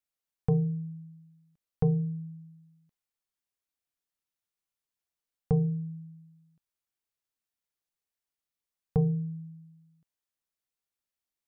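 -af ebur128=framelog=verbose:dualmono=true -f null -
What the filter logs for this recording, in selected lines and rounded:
Integrated loudness:
  I:         -27.5 LUFS
  Threshold: -40.1 LUFS
Loudness range:
  LRA:         7.1 LU
  Threshold: -53.9 LUFS
  LRA low:   -37.7 LUFS
  LRA high:  -30.6 LUFS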